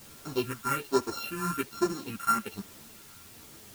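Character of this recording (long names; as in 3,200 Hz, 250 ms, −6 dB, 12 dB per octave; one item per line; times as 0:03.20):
a buzz of ramps at a fixed pitch in blocks of 32 samples
phaser sweep stages 4, 1.2 Hz, lowest notch 530–3,100 Hz
a quantiser's noise floor 8 bits, dither triangular
a shimmering, thickened sound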